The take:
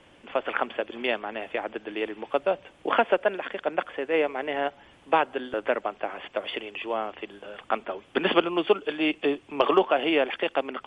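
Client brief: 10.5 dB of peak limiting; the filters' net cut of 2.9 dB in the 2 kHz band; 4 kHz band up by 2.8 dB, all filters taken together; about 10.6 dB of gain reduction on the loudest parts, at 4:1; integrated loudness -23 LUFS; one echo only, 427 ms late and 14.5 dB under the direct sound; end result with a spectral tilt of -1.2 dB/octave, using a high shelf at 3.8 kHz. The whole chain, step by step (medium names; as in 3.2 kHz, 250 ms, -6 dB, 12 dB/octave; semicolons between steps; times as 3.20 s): peaking EQ 2 kHz -8.5 dB; treble shelf 3.8 kHz +8 dB; peaking EQ 4 kHz +4.5 dB; compression 4:1, threshold -29 dBFS; peak limiter -23.5 dBFS; delay 427 ms -14.5 dB; trim +13.5 dB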